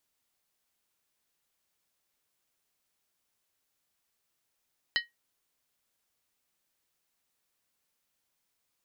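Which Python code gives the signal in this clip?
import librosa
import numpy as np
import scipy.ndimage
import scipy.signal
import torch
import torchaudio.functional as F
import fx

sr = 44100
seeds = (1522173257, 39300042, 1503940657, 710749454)

y = fx.strike_skin(sr, length_s=0.63, level_db=-22, hz=1890.0, decay_s=0.17, tilt_db=3.0, modes=5)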